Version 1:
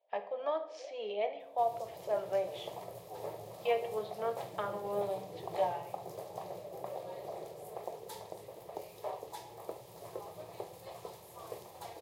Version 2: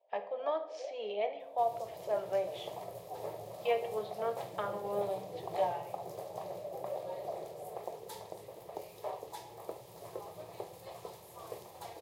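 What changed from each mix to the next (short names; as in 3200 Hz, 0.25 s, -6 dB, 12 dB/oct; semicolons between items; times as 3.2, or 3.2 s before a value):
first sound +5.0 dB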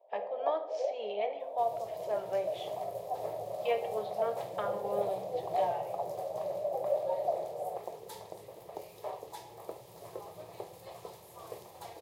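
first sound +9.5 dB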